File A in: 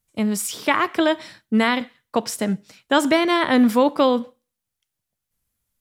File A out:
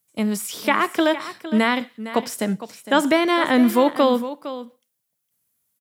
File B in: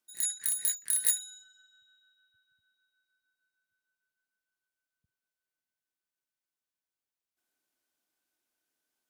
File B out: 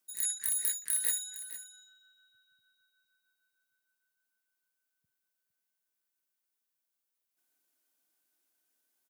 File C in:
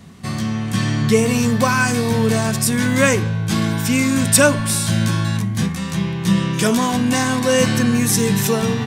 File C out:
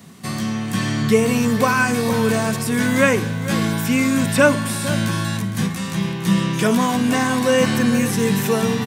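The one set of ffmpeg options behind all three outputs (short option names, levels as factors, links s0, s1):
-filter_complex "[0:a]acrossover=split=3200[s0][s1];[s1]acompressor=threshold=0.0224:ratio=4:attack=1:release=60[s2];[s0][s2]amix=inputs=2:normalize=0,highpass=140,highshelf=f=9000:g=10.5,aecho=1:1:459:0.211"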